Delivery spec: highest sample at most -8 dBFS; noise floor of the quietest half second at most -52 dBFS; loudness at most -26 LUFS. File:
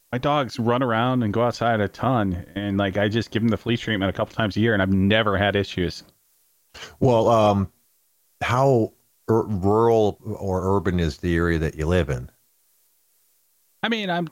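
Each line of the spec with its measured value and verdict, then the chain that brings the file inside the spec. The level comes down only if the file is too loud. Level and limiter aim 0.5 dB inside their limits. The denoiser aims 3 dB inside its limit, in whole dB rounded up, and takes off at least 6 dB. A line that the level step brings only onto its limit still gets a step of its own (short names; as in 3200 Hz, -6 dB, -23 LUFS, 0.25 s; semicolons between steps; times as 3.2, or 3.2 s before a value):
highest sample -6.5 dBFS: fail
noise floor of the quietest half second -64 dBFS: OK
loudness -22.0 LUFS: fail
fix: gain -4.5 dB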